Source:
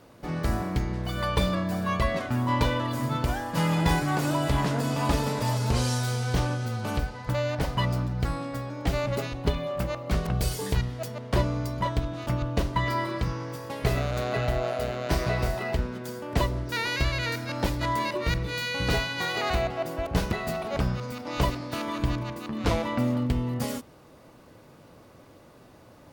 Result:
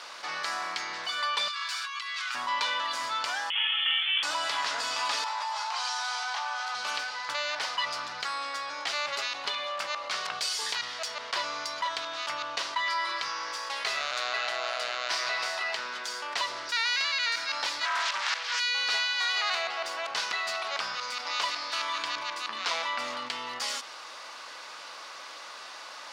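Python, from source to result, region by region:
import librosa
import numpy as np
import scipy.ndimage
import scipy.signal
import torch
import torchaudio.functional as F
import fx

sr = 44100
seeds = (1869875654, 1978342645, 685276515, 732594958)

y = fx.chain(x, sr, fx.highpass(hz=1300.0, slope=24),
    fx.peak_eq(hz=1800.0, db=-8.0, octaves=0.21),
    fx.over_compress(threshold_db=-43.0, ratio=-1.0), at=(1.48, 2.35))
y = fx.chain(y, sr, fx.steep_highpass(hz=350.0, slope=48),
    fx.freq_invert(carrier_hz=3800), at=(3.5, 4.23))
y = fx.chain(y, sr, fx.ladder_highpass(hz=720.0, resonance_pct=60),
    fx.high_shelf(hz=5500.0, db=-9.0),
    fx.env_flatten(amount_pct=70), at=(5.24, 6.75))
y = fx.chain(y, sr, fx.highpass(hz=520.0, slope=24),
    fx.doppler_dist(depth_ms=0.87), at=(17.85, 18.6))
y = scipy.signal.sosfilt(scipy.signal.cheby1(2, 1.0, [1100.0, 5100.0], 'bandpass', fs=sr, output='sos'), y)
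y = fx.high_shelf(y, sr, hz=3100.0, db=10.5)
y = fx.env_flatten(y, sr, amount_pct=50)
y = F.gain(torch.from_numpy(y), -3.5).numpy()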